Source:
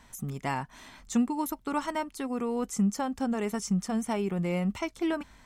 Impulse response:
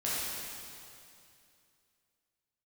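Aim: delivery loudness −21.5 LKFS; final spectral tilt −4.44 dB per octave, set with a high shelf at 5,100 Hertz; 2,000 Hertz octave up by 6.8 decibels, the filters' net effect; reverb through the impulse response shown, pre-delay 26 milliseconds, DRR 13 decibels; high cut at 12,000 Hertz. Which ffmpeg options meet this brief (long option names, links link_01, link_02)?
-filter_complex "[0:a]lowpass=12000,equalizer=frequency=2000:width_type=o:gain=7,highshelf=frequency=5100:gain=8.5,asplit=2[link_01][link_02];[1:a]atrim=start_sample=2205,adelay=26[link_03];[link_02][link_03]afir=irnorm=-1:irlink=0,volume=-20.5dB[link_04];[link_01][link_04]amix=inputs=2:normalize=0,volume=8dB"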